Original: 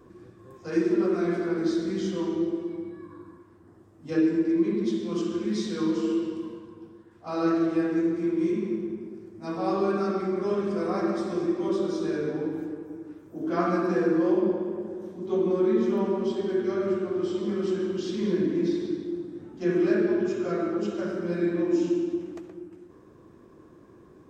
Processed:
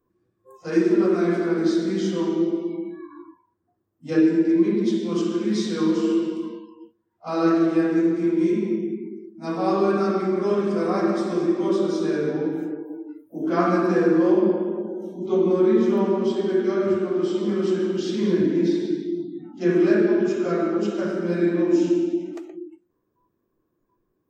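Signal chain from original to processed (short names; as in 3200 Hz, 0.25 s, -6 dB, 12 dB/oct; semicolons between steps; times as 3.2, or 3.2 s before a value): spectral noise reduction 26 dB; gain +5 dB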